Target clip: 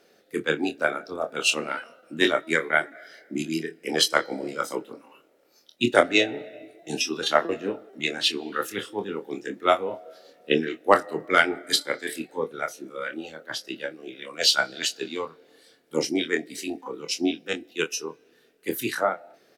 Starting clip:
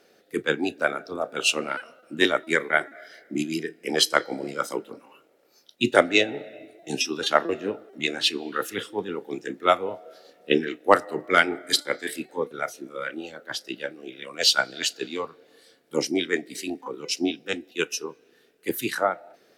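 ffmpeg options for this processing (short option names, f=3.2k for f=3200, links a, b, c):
-filter_complex "[0:a]asplit=2[a][b];[b]adelay=25,volume=-8dB[c];[a][c]amix=inputs=2:normalize=0,volume=-1dB"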